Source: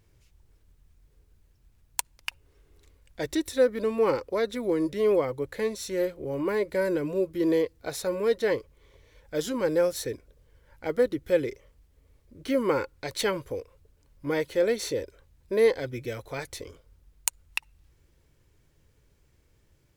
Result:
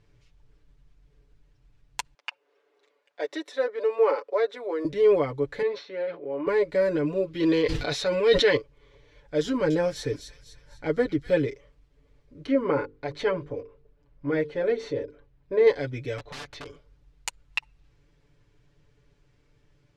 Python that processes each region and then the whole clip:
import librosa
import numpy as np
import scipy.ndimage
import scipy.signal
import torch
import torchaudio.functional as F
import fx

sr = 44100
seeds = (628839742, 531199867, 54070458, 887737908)

y = fx.chain(x, sr, fx.highpass(hz=480.0, slope=24),
    fx.tilt_eq(slope=-2.5), at=(2.14, 4.85))
y = fx.chain(y, sr, fx.bandpass_edges(low_hz=400.0, high_hz=5300.0),
    fx.air_absorb(metres=290.0),
    fx.sustainer(db_per_s=120.0), at=(5.62, 6.47))
y = fx.chain(y, sr, fx.peak_eq(hz=3300.0, db=9.0, octaves=1.8),
    fx.sustainer(db_per_s=42.0), at=(7.27, 8.57))
y = fx.chain(y, sr, fx.low_shelf(hz=200.0, db=6.0),
    fx.echo_wet_highpass(ms=251, feedback_pct=43, hz=3100.0, wet_db=-5.5), at=(9.45, 11.47))
y = fx.chain(y, sr, fx.lowpass(hz=1500.0, slope=6),
    fx.hum_notches(base_hz=50, count=10), at=(12.46, 15.67))
y = fx.chain(y, sr, fx.lowpass(hz=4100.0, slope=12),
    fx.overflow_wrap(gain_db=34.0), at=(16.18, 16.66))
y = scipy.signal.sosfilt(scipy.signal.butter(2, 4800.0, 'lowpass', fs=sr, output='sos'), y)
y = y + 0.79 * np.pad(y, (int(6.9 * sr / 1000.0), 0))[:len(y)]